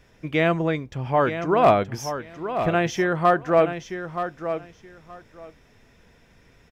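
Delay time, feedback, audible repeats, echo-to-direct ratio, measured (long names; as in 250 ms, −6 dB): 925 ms, 17%, 2, −9.5 dB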